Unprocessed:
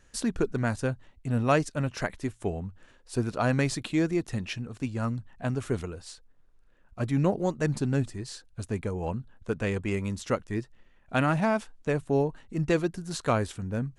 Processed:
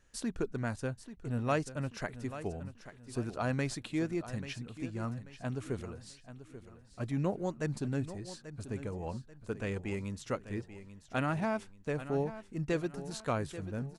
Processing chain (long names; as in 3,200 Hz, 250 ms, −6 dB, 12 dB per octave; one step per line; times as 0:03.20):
repeating echo 837 ms, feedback 36%, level −13 dB
level −7.5 dB